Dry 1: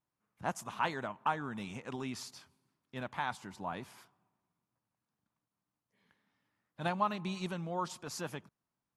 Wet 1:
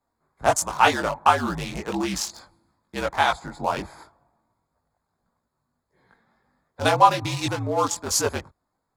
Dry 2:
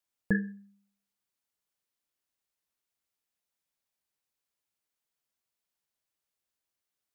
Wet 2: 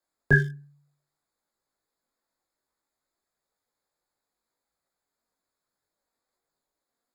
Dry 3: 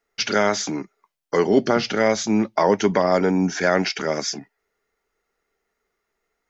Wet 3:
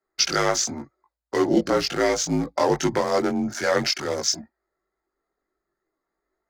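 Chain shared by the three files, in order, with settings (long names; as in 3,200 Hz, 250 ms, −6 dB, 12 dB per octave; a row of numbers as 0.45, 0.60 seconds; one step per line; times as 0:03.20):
adaptive Wiener filter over 15 samples
bass and treble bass −8 dB, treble +11 dB
frequency shifter −56 Hz
multi-voice chorus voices 4, 0.59 Hz, delay 20 ms, depth 2.2 ms
loudness normalisation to −23 LKFS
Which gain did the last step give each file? +19.0, +14.0, +1.5 decibels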